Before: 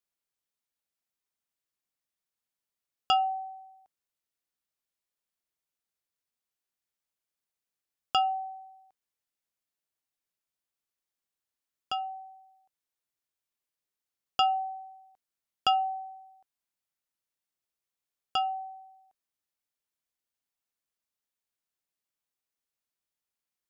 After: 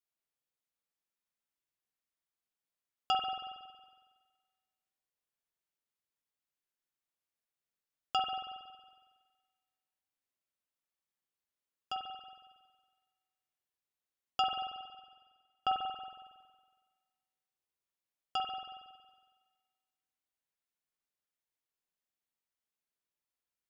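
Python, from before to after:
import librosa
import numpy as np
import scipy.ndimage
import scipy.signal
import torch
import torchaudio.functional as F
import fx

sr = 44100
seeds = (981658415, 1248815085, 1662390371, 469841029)

y = fx.lowpass(x, sr, hz=2500.0, slope=12, at=(14.5, 15.86))
y = fx.rev_spring(y, sr, rt60_s=1.5, pass_ms=(46,), chirp_ms=30, drr_db=0.0)
y = F.gain(torch.from_numpy(y), -6.0).numpy()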